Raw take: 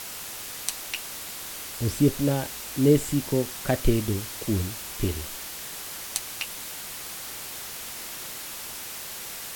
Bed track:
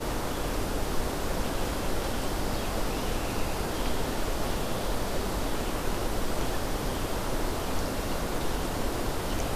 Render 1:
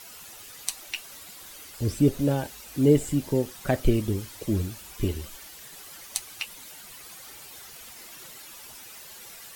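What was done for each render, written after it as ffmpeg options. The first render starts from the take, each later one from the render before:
ffmpeg -i in.wav -af "afftdn=noise_reduction=11:noise_floor=-38" out.wav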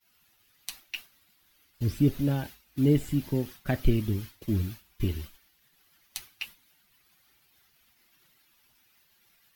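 ffmpeg -i in.wav -af "agate=range=-33dB:threshold=-33dB:ratio=3:detection=peak,equalizer=frequency=500:width_type=o:width=1:gain=-9,equalizer=frequency=1000:width_type=o:width=1:gain=-4,equalizer=frequency=8000:width_type=o:width=1:gain=-12" out.wav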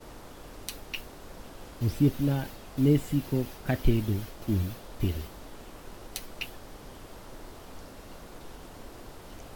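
ffmpeg -i in.wav -i bed.wav -filter_complex "[1:a]volume=-15.5dB[link_01];[0:a][link_01]amix=inputs=2:normalize=0" out.wav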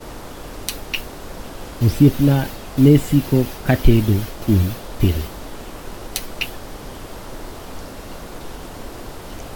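ffmpeg -i in.wav -af "volume=12dB,alimiter=limit=-1dB:level=0:latency=1" out.wav

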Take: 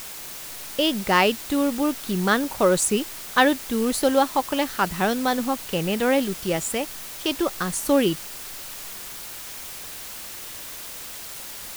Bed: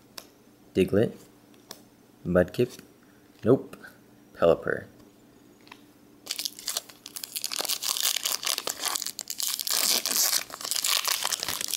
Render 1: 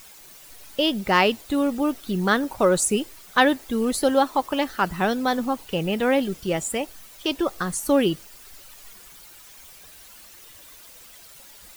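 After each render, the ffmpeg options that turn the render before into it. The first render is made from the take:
ffmpeg -i in.wav -af "afftdn=noise_reduction=12:noise_floor=-37" out.wav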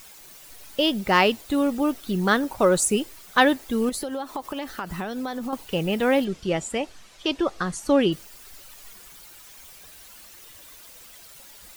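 ffmpeg -i in.wav -filter_complex "[0:a]asettb=1/sr,asplit=3[link_01][link_02][link_03];[link_01]atrim=end=3.894[link_04];[link_02]atrim=start=3.89:end=5.53,asetpts=PTS-STARTPTS,afade=type=in:duration=0.004:curve=qsin,afade=type=out:start_time=1.636:duration=0.004:curve=qsin,acompressor=threshold=-26dB:ratio=12:attack=3.2:release=140:knee=1:detection=peak[link_05];[link_03]atrim=start=5.526[link_06];[link_04][link_05]acrossfade=duration=0.004:curve1=hsin:curve2=qsin[link_07];[link_07][link_06]acrossfade=duration=0.004:curve1=qsin:curve2=hsin,asplit=3[link_08][link_09][link_10];[link_08]afade=type=out:start_time=6.24:duration=0.02[link_11];[link_09]lowpass=6300,afade=type=in:start_time=6.24:duration=0.02,afade=type=out:start_time=8.11:duration=0.02[link_12];[link_10]afade=type=in:start_time=8.11:duration=0.02[link_13];[link_11][link_12][link_13]amix=inputs=3:normalize=0" out.wav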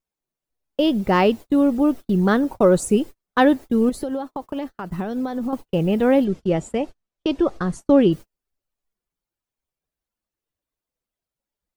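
ffmpeg -i in.wav -af "agate=range=-39dB:threshold=-33dB:ratio=16:detection=peak,tiltshelf=frequency=970:gain=7" out.wav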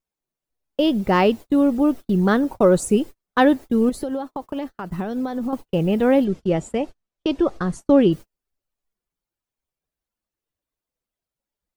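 ffmpeg -i in.wav -af anull out.wav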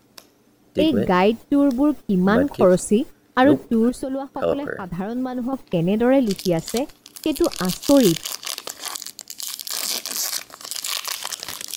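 ffmpeg -i in.wav -i bed.wav -filter_complex "[1:a]volume=-1dB[link_01];[0:a][link_01]amix=inputs=2:normalize=0" out.wav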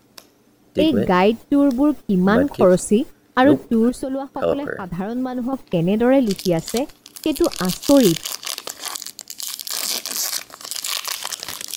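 ffmpeg -i in.wav -af "volume=1.5dB,alimiter=limit=-3dB:level=0:latency=1" out.wav

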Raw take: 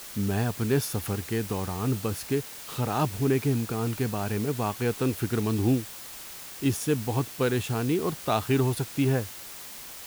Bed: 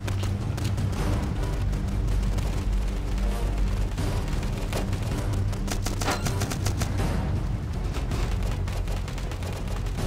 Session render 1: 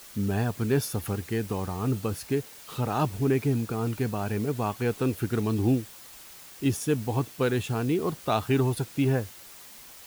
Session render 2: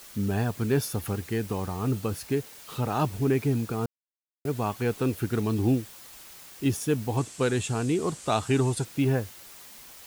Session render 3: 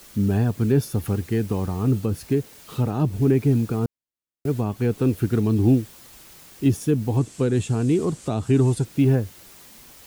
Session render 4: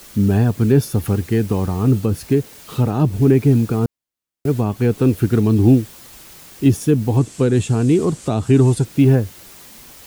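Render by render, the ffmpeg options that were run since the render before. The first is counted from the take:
ffmpeg -i in.wav -af "afftdn=noise_reduction=6:noise_floor=-42" out.wav
ffmpeg -i in.wav -filter_complex "[0:a]asettb=1/sr,asplit=3[link_01][link_02][link_03];[link_01]atrim=end=7.174[link_04];[link_02]atrim=start=7.17:end=8.85,asetpts=PTS-STARTPTS,afade=type=in:duration=0.004:curve=qsin,afade=type=out:start_time=1.676:duration=0.004:curve=qsin,lowpass=frequency=8000:width_type=q:width=3.6[link_05];[link_03]atrim=start=8.846[link_06];[link_04][link_05]acrossfade=duration=0.004:curve1=hsin:curve2=qsin[link_07];[link_07][link_06]acrossfade=duration=0.004:curve1=qsin:curve2=hsin,asplit=3[link_08][link_09][link_10];[link_08]atrim=end=3.86,asetpts=PTS-STARTPTS,afade=type=out:start_time=3.856:duration=0.004:curve=hsin[link_11];[link_09]atrim=start=3.86:end=4.45,asetpts=PTS-STARTPTS,volume=0[link_12];[link_10]atrim=start=4.45,asetpts=PTS-STARTPTS,afade=type=in:duration=0.004:curve=hsin[link_13];[link_11][link_12][link_13]concat=n=3:v=0:a=1" out.wav
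ffmpeg -i in.wav -filter_complex "[0:a]acrossover=split=430[link_01][link_02];[link_01]acontrast=89[link_03];[link_02]alimiter=level_in=0.5dB:limit=-24dB:level=0:latency=1:release=197,volume=-0.5dB[link_04];[link_03][link_04]amix=inputs=2:normalize=0" out.wav
ffmpeg -i in.wav -af "volume=5.5dB" out.wav

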